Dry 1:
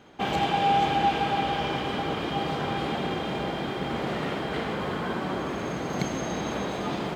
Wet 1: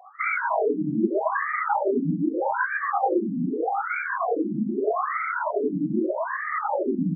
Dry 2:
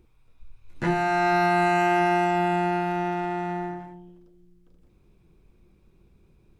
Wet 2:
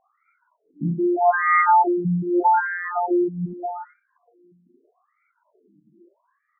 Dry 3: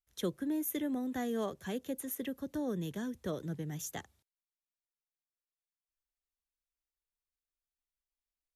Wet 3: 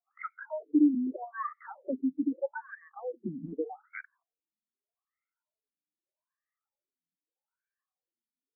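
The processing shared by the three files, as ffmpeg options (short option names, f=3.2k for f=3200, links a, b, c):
-af "afftfilt=real='re*pow(10,24/40*sin(2*PI*(1.5*log(max(b,1)*sr/1024/100)/log(2)-(1.4)*(pts-256)/sr)))':imag='im*pow(10,24/40*sin(2*PI*(1.5*log(max(b,1)*sr/1024/100)/log(2)-(1.4)*(pts-256)/sr)))':win_size=1024:overlap=0.75,lowpass=f=3.3k:w=0.5412,lowpass=f=3.3k:w=1.3066,aemphasis=mode=production:type=cd,acontrast=58,afftfilt=real='re*between(b*sr/1024,220*pow(1700/220,0.5+0.5*sin(2*PI*0.81*pts/sr))/1.41,220*pow(1700/220,0.5+0.5*sin(2*PI*0.81*pts/sr))*1.41)':imag='im*between(b*sr/1024,220*pow(1700/220,0.5+0.5*sin(2*PI*0.81*pts/sr))/1.41,220*pow(1700/220,0.5+0.5*sin(2*PI*0.81*pts/sr))*1.41)':win_size=1024:overlap=0.75"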